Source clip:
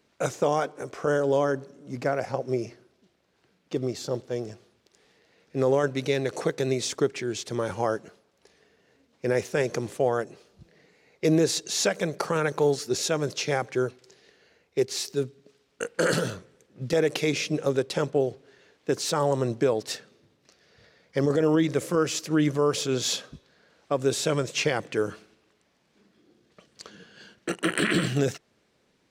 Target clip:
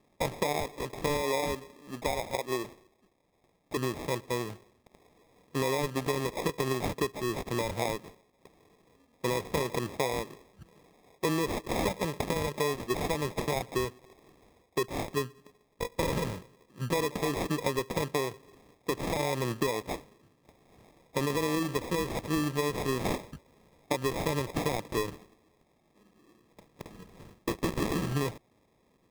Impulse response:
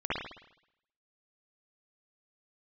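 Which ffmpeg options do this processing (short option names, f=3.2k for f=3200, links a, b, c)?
-filter_complex "[0:a]asettb=1/sr,asplit=3[a][b][c];[a]atrim=end=1.174[d];[b]atrim=start=1.17:end=3.77,asetpts=PTS-STARTPTS,afade=t=in:d=0.004:c=qsin,afade=t=out:st=2.596:d=0.004:c=qsin,highpass=f=370:p=1[e];[c]atrim=start=3.766[f];[d][e]acrossfade=d=0.004:c1=hsin:c2=qsin[g];[g][f]acrossfade=d=0.004:c1=qsin:c2=hsin,acompressor=threshold=-26dB:ratio=6,acrusher=samples=30:mix=1:aa=0.000001"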